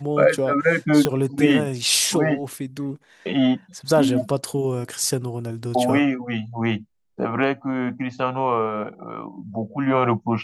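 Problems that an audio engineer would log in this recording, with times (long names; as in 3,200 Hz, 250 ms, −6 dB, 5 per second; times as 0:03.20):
0:01.05: click −5 dBFS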